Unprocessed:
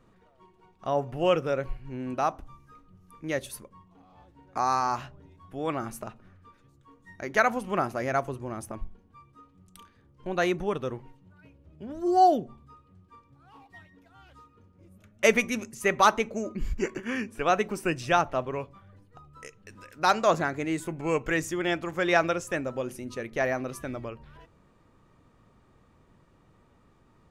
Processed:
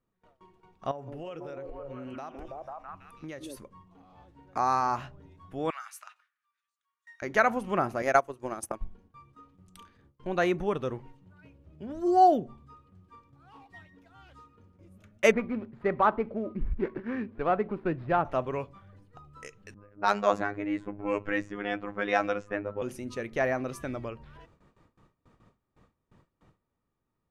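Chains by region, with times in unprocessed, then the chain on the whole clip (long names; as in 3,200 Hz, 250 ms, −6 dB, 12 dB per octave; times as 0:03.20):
0:00.91–0:03.57: echo through a band-pass that steps 164 ms, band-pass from 310 Hz, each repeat 0.7 octaves, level −3 dB + downward compressor 12 to 1, threshold −36 dBFS
0:05.70–0:07.22: high-pass filter 1,300 Hz 24 dB per octave + upward compression, threshold −57 dBFS
0:08.02–0:08.81: bass and treble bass −9 dB, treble +6 dB + transient designer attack +10 dB, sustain −11 dB
0:15.31–0:18.25: running median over 15 samples + high-frequency loss of the air 470 metres
0:19.74–0:22.82: low-pass that shuts in the quiet parts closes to 650 Hz, open at −17.5 dBFS + phases set to zero 102 Hz
whole clip: dynamic equaliser 5,100 Hz, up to −5 dB, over −43 dBFS, Q 0.72; noise gate with hold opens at −50 dBFS; high-shelf EQ 12,000 Hz −10.5 dB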